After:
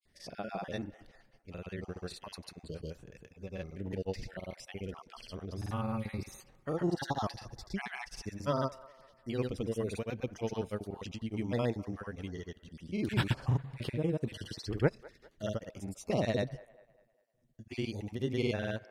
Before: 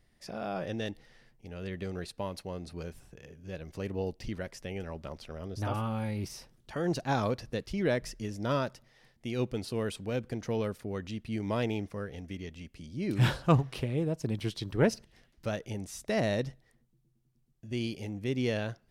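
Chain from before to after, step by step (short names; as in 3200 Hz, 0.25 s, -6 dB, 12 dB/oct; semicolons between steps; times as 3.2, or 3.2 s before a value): random spectral dropouts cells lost 29%; grains, pitch spread up and down by 0 st; band-limited delay 0.2 s, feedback 43%, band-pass 1000 Hz, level -18 dB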